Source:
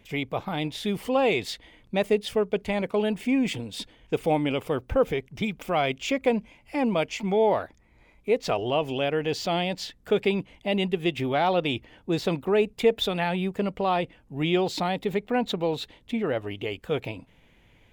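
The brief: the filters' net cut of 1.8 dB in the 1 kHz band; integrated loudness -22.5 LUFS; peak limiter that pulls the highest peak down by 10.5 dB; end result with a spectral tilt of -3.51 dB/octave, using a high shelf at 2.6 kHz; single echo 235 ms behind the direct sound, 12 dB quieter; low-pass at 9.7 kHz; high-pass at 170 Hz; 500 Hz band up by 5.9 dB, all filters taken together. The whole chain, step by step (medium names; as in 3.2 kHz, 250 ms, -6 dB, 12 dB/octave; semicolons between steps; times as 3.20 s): high-pass 170 Hz; low-pass 9.7 kHz; peaking EQ 500 Hz +9 dB; peaking EQ 1 kHz -9 dB; treble shelf 2.6 kHz +5.5 dB; peak limiter -14.5 dBFS; delay 235 ms -12 dB; trim +3 dB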